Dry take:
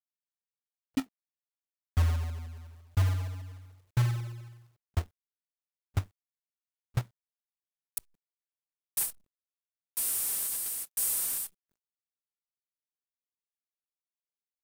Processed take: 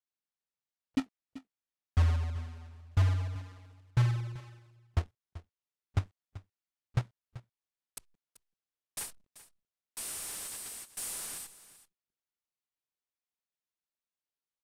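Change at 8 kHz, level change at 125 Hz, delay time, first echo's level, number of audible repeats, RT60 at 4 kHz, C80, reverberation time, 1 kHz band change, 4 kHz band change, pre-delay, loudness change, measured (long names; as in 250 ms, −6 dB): −7.5 dB, 0.0 dB, 385 ms, −16.5 dB, 1, no reverb audible, no reverb audible, no reverb audible, 0.0 dB, −2.0 dB, no reverb audible, −3.0 dB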